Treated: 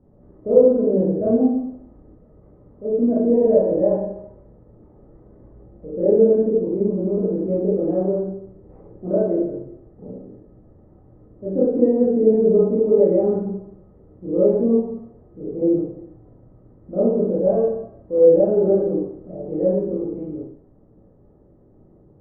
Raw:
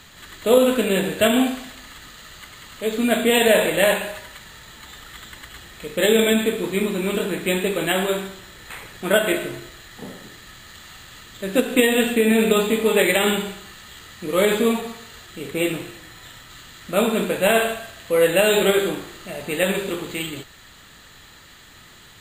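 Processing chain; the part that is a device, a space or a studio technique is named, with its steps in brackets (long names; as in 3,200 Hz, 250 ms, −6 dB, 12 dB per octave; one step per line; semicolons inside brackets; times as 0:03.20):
next room (low-pass filter 540 Hz 24 dB per octave; convolution reverb RT60 0.55 s, pre-delay 20 ms, DRR −7 dB)
level −4 dB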